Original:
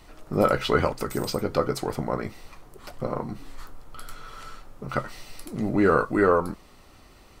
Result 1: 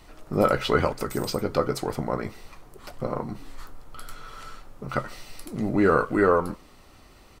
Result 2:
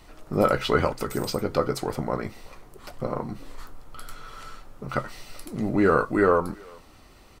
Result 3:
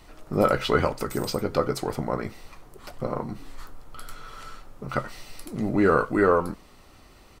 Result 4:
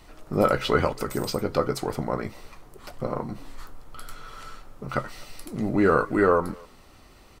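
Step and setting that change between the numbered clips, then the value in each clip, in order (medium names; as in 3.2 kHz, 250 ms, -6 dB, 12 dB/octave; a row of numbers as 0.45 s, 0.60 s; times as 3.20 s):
speakerphone echo, time: 150 ms, 380 ms, 90 ms, 250 ms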